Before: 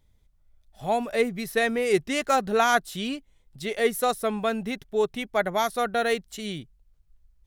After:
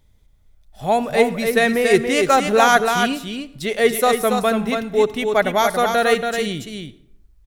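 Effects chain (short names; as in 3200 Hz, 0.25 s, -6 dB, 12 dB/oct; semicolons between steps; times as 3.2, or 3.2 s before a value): echo 0.281 s -5.5 dB; on a send at -17 dB: reverb RT60 0.80 s, pre-delay 58 ms; on the sum: gain +7 dB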